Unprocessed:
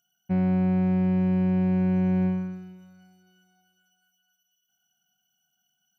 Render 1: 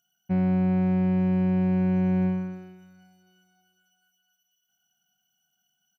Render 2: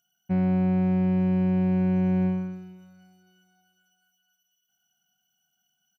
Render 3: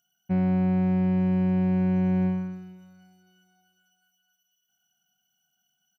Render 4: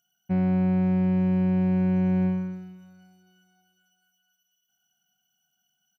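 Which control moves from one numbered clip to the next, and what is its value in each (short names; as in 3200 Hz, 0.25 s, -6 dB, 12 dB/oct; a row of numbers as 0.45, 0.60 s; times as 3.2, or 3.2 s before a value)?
speakerphone echo, time: 400, 130, 80, 240 ms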